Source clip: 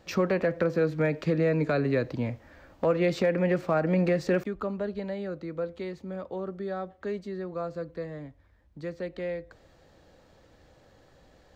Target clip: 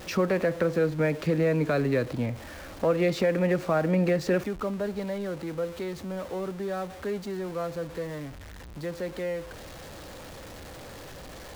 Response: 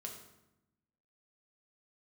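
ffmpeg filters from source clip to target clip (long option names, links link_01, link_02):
-af "aeval=exprs='val(0)+0.5*0.0119*sgn(val(0))':channel_layout=same"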